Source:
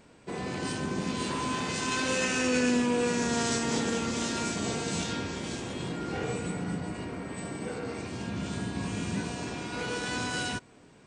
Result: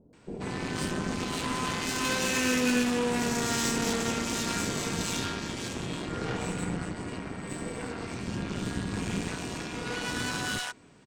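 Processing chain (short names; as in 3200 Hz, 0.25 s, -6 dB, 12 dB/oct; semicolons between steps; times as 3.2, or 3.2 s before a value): added harmonics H 8 -17 dB, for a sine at -14.5 dBFS; bands offset in time lows, highs 0.13 s, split 590 Hz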